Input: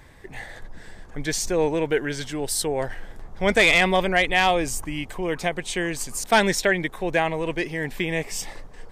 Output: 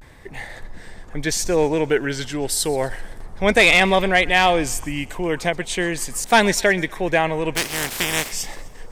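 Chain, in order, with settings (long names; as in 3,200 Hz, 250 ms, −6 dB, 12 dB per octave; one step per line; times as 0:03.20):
0:07.56–0:08.29: compressing power law on the bin magnitudes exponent 0.3
feedback echo with a high-pass in the loop 127 ms, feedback 55%, high-pass 790 Hz, level −20 dB
pitch vibrato 0.35 Hz 53 cents
level +3.5 dB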